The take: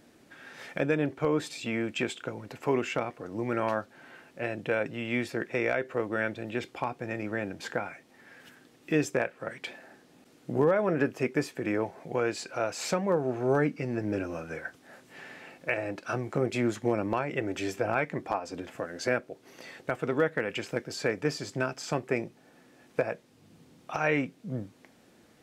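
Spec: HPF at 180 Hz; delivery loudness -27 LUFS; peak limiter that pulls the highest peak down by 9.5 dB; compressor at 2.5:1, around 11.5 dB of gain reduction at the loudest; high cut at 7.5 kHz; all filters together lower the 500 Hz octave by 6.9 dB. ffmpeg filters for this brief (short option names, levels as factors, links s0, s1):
-af "highpass=180,lowpass=7500,equalizer=f=500:t=o:g=-8.5,acompressor=threshold=0.00631:ratio=2.5,volume=9.44,alimiter=limit=0.178:level=0:latency=1"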